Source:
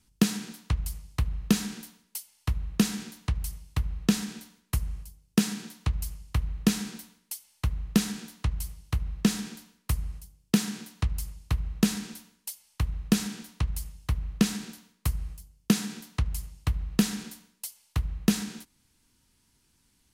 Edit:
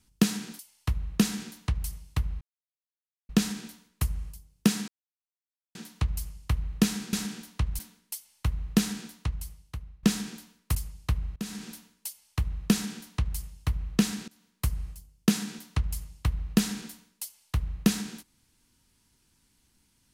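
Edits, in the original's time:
0:00.59–0:02.19: remove
0:04.01: splice in silence 0.88 s
0:05.60: splice in silence 0.87 s
0:08.19–0:09.22: fade out, to −20.5 dB
0:09.94–0:11.17: remove
0:11.78–0:12.13: fade in, from −23 dB
0:13.14–0:13.80: duplicate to 0:06.98
0:14.70–0:15.08: fade in, from −21 dB

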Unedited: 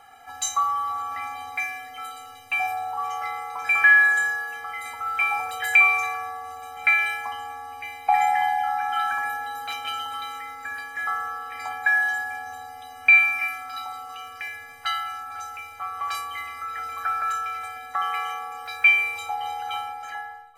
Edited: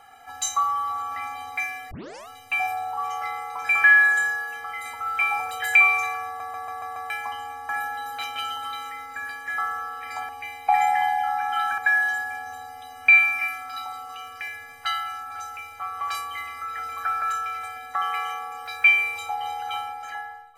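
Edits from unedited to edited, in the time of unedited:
0:01.91: tape start 0.37 s
0:06.26: stutter in place 0.14 s, 6 plays
0:07.69–0:09.18: move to 0:11.78

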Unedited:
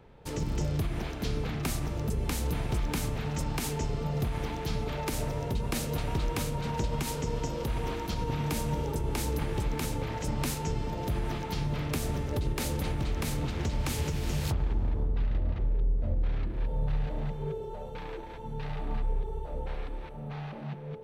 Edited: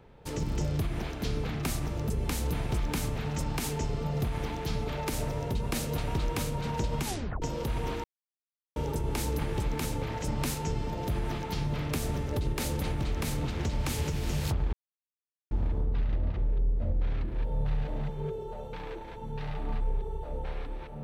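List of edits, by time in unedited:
0:07.05: tape stop 0.37 s
0:08.04–0:08.76: silence
0:14.73: splice in silence 0.78 s

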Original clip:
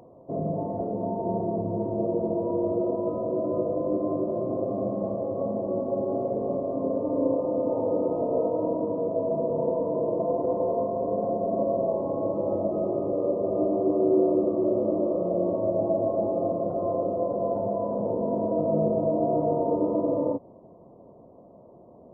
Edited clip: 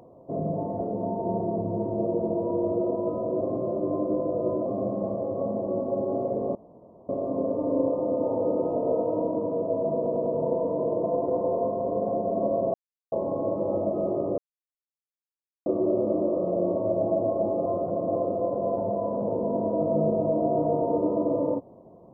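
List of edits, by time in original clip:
0:03.41–0:04.66: reverse
0:06.55: splice in room tone 0.54 s
0:09.42: stutter 0.10 s, 4 plays
0:11.90: splice in silence 0.38 s
0:13.16–0:14.44: silence
0:16.44–0:16.94: reverse

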